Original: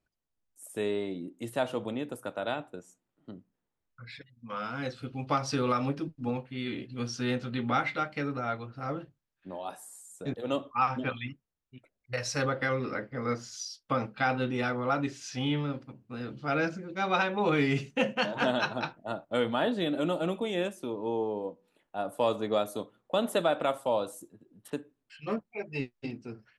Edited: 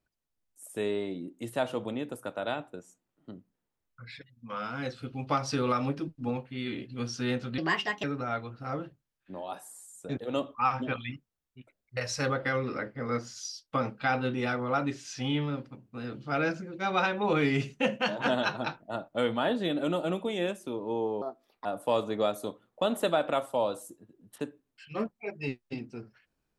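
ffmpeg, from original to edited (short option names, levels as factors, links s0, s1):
-filter_complex "[0:a]asplit=5[s0][s1][s2][s3][s4];[s0]atrim=end=7.584[s5];[s1]atrim=start=7.58:end=8.2,asetpts=PTS-STARTPTS,asetrate=59976,aresample=44100,atrim=end_sample=20104,asetpts=PTS-STARTPTS[s6];[s2]atrim=start=8.196:end=21.384[s7];[s3]atrim=start=21.38:end=21.97,asetpts=PTS-STARTPTS,asetrate=59976,aresample=44100[s8];[s4]atrim=start=21.966[s9];[s5][s6]acrossfade=d=0.004:c1=hsin:c2=hsin[s10];[s10][s7]acrossfade=d=0.004:c1=hsin:c2=hsin[s11];[s11][s8]acrossfade=d=0.004:c1=hsin:c2=hsin[s12];[s12][s9]acrossfade=d=0.004:c1=hsin:c2=hsin"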